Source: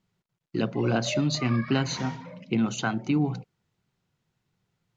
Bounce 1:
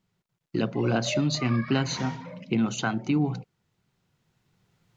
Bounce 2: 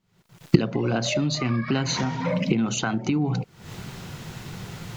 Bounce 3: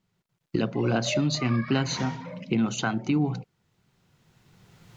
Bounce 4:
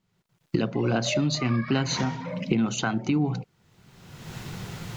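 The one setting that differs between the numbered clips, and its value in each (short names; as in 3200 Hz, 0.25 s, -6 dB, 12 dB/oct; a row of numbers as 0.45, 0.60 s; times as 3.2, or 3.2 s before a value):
recorder AGC, rising by: 5.4, 85, 14, 35 dB/s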